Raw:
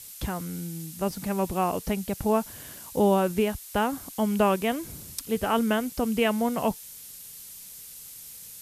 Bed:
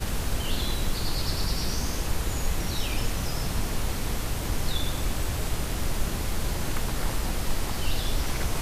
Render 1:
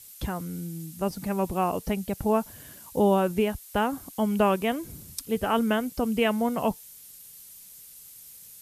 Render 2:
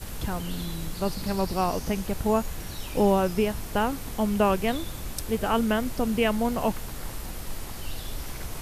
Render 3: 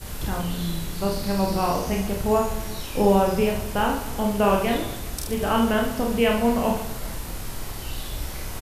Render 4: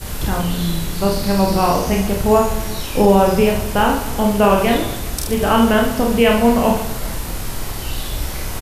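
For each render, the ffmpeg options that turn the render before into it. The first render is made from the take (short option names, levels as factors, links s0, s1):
-af "afftdn=nr=6:nf=-44"
-filter_complex "[1:a]volume=0.398[s0];[0:a][s0]amix=inputs=2:normalize=0"
-filter_complex "[0:a]asplit=2[s0][s1];[s1]adelay=47,volume=0.562[s2];[s0][s2]amix=inputs=2:normalize=0,aecho=1:1:30|75|142.5|243.8|395.6:0.631|0.398|0.251|0.158|0.1"
-af "volume=2.37,alimiter=limit=0.794:level=0:latency=1"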